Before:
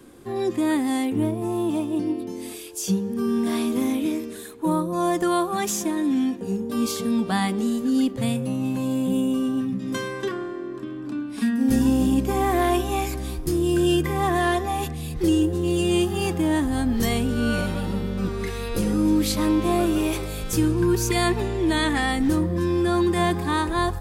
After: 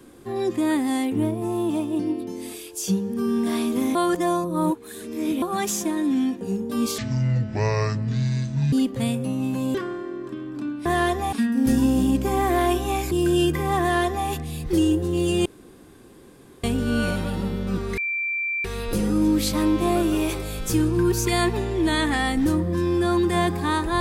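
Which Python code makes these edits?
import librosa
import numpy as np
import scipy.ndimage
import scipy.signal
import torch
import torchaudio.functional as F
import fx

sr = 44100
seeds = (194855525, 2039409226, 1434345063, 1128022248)

y = fx.edit(x, sr, fx.reverse_span(start_s=3.95, length_s=1.47),
    fx.speed_span(start_s=6.98, length_s=0.96, speed=0.55),
    fx.cut(start_s=8.96, length_s=1.29),
    fx.cut(start_s=13.15, length_s=0.47),
    fx.duplicate(start_s=14.31, length_s=0.47, to_s=11.36),
    fx.room_tone_fill(start_s=15.96, length_s=1.18),
    fx.insert_tone(at_s=18.48, length_s=0.67, hz=2350.0, db=-23.0), tone=tone)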